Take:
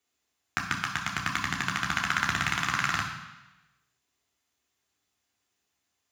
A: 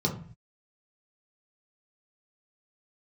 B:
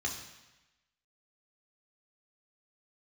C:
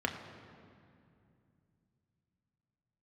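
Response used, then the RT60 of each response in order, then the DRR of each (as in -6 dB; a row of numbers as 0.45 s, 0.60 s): B; 0.45 s, 1.0 s, 2.5 s; -1.5 dB, -0.5 dB, 2.0 dB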